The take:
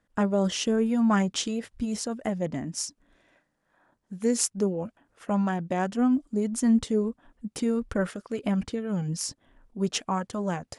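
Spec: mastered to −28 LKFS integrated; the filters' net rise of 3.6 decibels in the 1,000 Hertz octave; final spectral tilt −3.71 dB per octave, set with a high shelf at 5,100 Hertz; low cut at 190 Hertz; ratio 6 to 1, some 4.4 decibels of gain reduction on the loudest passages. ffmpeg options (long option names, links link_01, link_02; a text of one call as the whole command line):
ffmpeg -i in.wav -af "highpass=190,equalizer=frequency=1000:width_type=o:gain=4.5,highshelf=frequency=5100:gain=6,acompressor=threshold=-24dB:ratio=6,volume=2.5dB" out.wav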